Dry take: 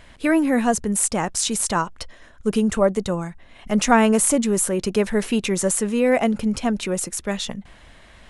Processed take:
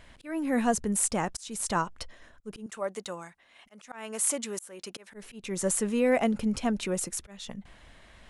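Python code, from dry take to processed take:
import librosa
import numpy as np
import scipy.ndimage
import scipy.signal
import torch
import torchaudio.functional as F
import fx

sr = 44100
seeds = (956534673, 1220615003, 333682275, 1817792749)

y = fx.highpass(x, sr, hz=1000.0, slope=6, at=(2.66, 5.14))
y = fx.auto_swell(y, sr, attack_ms=382.0)
y = F.gain(torch.from_numpy(y), -6.0).numpy()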